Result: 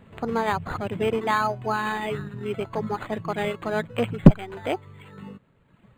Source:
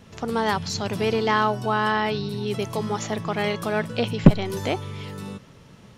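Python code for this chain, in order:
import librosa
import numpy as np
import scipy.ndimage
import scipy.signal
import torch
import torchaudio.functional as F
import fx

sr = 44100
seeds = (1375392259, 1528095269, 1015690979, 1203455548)

p1 = fx.dereverb_blind(x, sr, rt60_s=1.7)
p2 = np.sign(p1) * np.maximum(np.abs(p1) - 10.0 ** (-33.5 / 20.0), 0.0)
p3 = p1 + (p2 * librosa.db_to_amplitude(-8.5))
p4 = np.interp(np.arange(len(p3)), np.arange(len(p3))[::8], p3[::8])
y = p4 * librosa.db_to_amplitude(-1.5)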